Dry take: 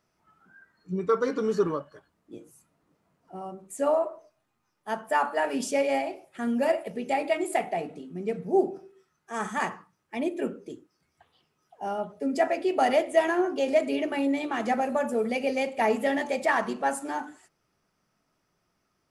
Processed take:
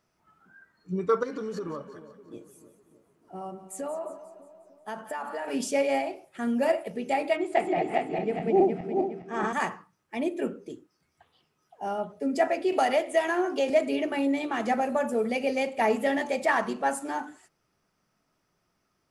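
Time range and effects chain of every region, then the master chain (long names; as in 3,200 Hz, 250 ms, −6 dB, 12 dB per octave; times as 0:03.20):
0:01.23–0:05.48: downward compressor 10 to 1, threshold −30 dBFS + echo with a time of its own for lows and highs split 770 Hz, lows 301 ms, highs 178 ms, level −13 dB
0:07.36–0:09.53: feedback delay that plays each chunk backwards 207 ms, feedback 58%, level 0 dB + low-pass filter 4,000 Hz
0:12.72–0:13.70: low-shelf EQ 450 Hz −6 dB + multiband upward and downward compressor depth 70%
whole clip: no processing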